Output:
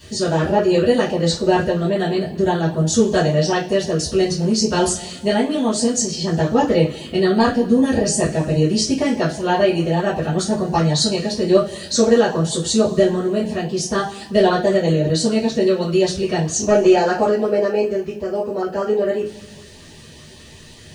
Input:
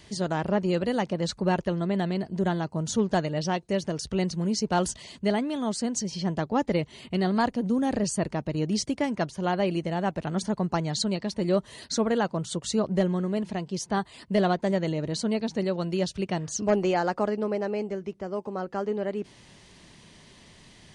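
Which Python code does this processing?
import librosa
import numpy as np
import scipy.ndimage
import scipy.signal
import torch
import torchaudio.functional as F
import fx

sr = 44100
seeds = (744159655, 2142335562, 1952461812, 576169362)

y = fx.notch(x, sr, hz=2100.0, q=9.4)
y = fx.rev_double_slope(y, sr, seeds[0], early_s=0.29, late_s=1.6, knee_db=-21, drr_db=-9.5)
y = fx.dmg_noise_colour(y, sr, seeds[1], colour='white', level_db=-66.0)
y = fx.filter_lfo_notch(y, sr, shape='saw_up', hz=5.1, low_hz=740.0, high_hz=1500.0, q=2.3)
y = y * 10.0 ** (1.0 / 20.0)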